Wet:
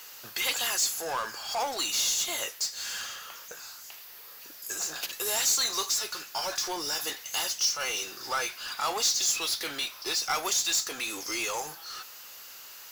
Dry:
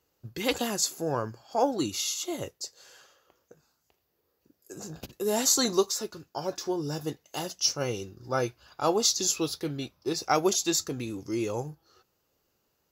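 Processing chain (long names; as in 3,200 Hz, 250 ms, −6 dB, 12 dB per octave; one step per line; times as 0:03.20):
high-pass filter 1,400 Hz 12 dB per octave
downward compressor 1.5 to 1, threshold −49 dBFS, peak gain reduction 11 dB
power curve on the samples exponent 0.5
level +3 dB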